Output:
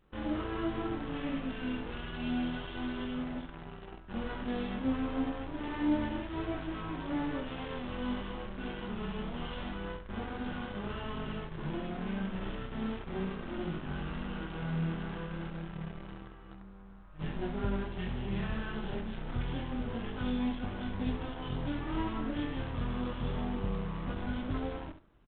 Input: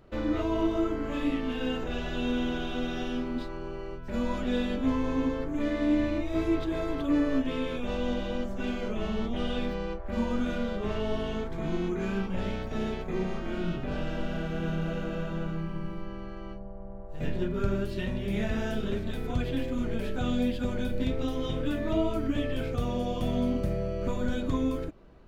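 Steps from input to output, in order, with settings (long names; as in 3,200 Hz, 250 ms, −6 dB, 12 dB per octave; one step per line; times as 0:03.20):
lower of the sound and its delayed copy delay 0.65 ms
dynamic equaliser 130 Hz, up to +3 dB, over −49 dBFS, Q 2
chorus effect 0.29 Hz, delay 19 ms, depth 7.9 ms
in parallel at −6.5 dB: bit reduction 6 bits
on the sum: pitch vibrato 0.41 Hz 21 cents
on a send: repeating echo 68 ms, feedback 17%, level −10 dB
on the sum: level −6 dB
G.726 32 kbit/s 8,000 Hz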